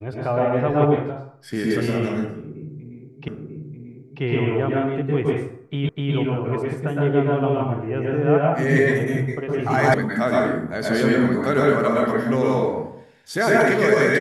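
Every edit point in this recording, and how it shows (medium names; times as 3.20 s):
3.28 s: repeat of the last 0.94 s
5.89 s: repeat of the last 0.25 s
9.94 s: sound stops dead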